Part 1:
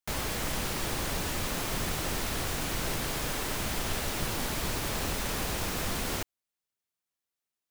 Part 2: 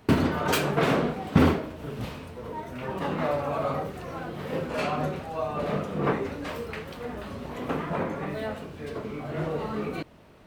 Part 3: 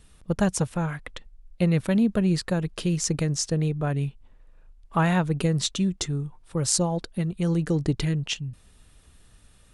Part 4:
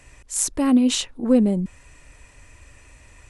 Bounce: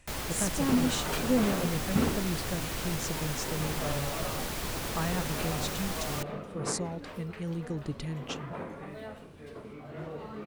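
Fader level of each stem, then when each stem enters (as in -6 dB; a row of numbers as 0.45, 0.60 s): -3.0, -10.0, -11.0, -10.0 dB; 0.00, 0.60, 0.00, 0.00 s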